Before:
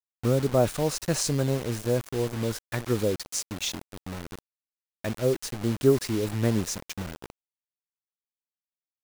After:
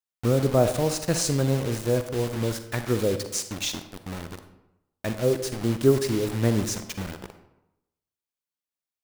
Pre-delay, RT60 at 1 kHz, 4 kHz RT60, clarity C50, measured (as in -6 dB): 39 ms, 0.90 s, 0.55 s, 10.0 dB